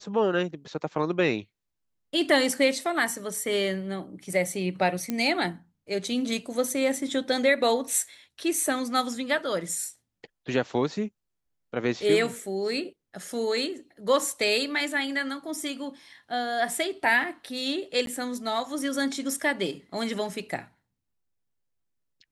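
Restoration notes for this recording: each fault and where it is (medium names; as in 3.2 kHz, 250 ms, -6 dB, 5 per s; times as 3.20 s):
5.10 s: pop -14 dBFS
18.06–18.07 s: dropout 12 ms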